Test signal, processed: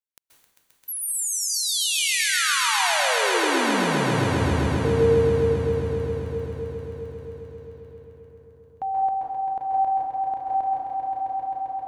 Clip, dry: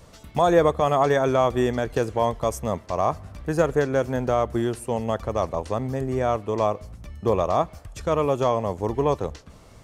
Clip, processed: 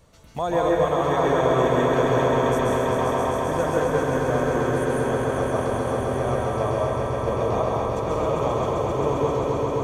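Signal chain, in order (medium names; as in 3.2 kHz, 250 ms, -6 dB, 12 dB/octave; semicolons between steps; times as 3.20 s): band-stop 5.1 kHz, Q 13; on a send: echo with a slow build-up 132 ms, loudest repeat 5, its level -6.5 dB; on the sum: plate-style reverb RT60 1.2 s, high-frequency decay 0.75×, pre-delay 120 ms, DRR -2.5 dB; trim -7 dB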